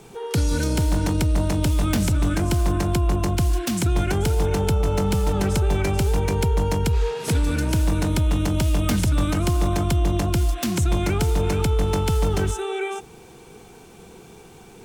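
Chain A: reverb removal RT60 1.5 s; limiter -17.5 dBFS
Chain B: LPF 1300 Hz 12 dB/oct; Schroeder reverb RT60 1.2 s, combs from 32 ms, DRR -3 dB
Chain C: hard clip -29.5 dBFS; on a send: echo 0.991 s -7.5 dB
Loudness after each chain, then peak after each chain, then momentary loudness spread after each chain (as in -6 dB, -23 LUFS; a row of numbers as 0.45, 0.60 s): -26.5, -18.0, -31.5 LUFS; -17.5, -4.5, -26.5 dBFS; 1, 2, 6 LU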